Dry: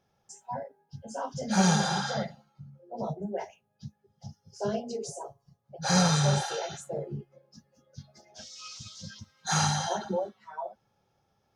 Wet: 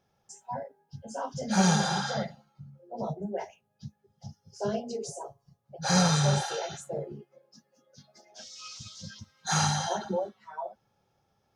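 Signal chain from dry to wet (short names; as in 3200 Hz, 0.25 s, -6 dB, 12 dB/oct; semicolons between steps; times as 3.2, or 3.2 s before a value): 7.12–8.46 HPF 250 Hz 12 dB/oct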